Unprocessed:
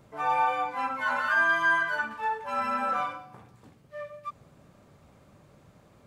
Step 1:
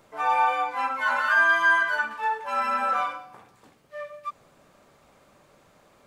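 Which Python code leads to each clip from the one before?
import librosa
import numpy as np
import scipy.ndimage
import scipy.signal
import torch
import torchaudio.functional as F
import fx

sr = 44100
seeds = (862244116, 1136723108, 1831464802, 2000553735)

y = fx.peak_eq(x, sr, hz=100.0, db=-15.0, octaves=2.8)
y = y * 10.0 ** (4.5 / 20.0)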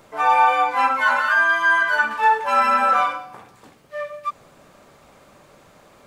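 y = fx.rider(x, sr, range_db=10, speed_s=0.5)
y = y * 10.0 ** (6.0 / 20.0)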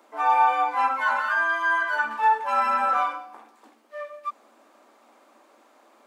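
y = scipy.signal.sosfilt(scipy.signal.cheby1(6, 6, 220.0, 'highpass', fs=sr, output='sos'), x)
y = y * 10.0 ** (-3.0 / 20.0)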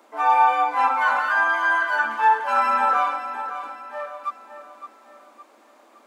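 y = fx.echo_feedback(x, sr, ms=562, feedback_pct=42, wet_db=-11)
y = y * 10.0 ** (2.5 / 20.0)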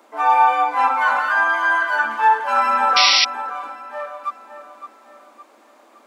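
y = fx.spec_paint(x, sr, seeds[0], shape='noise', start_s=2.96, length_s=0.29, low_hz=1900.0, high_hz=5800.0, level_db=-17.0)
y = y * 10.0 ** (2.5 / 20.0)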